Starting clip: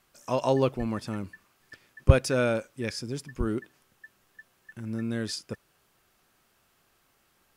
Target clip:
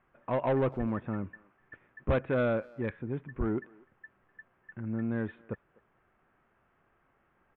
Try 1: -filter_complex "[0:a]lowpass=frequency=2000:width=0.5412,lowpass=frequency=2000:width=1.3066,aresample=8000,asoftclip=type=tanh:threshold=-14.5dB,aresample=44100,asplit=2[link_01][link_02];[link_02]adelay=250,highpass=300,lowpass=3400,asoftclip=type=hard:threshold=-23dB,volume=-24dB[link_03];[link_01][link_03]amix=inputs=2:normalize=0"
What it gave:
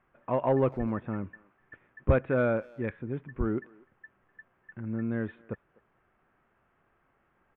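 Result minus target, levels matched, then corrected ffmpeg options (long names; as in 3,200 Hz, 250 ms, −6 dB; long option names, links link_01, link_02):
soft clipping: distortion −4 dB
-filter_complex "[0:a]lowpass=frequency=2000:width=0.5412,lowpass=frequency=2000:width=1.3066,aresample=8000,asoftclip=type=tanh:threshold=-22dB,aresample=44100,asplit=2[link_01][link_02];[link_02]adelay=250,highpass=300,lowpass=3400,asoftclip=type=hard:threshold=-23dB,volume=-24dB[link_03];[link_01][link_03]amix=inputs=2:normalize=0"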